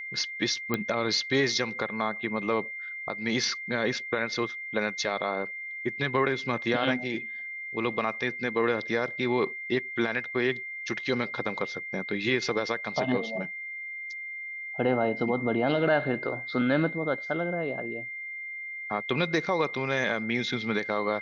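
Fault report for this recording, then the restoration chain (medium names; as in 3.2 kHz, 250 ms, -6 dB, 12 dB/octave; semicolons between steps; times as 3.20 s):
whine 2.1 kHz -35 dBFS
0.74 s: pop -13 dBFS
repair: de-click; band-stop 2.1 kHz, Q 30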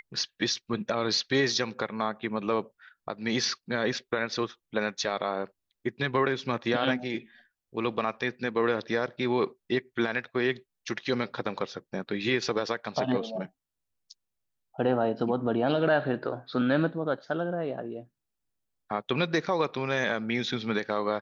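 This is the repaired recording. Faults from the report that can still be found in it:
nothing left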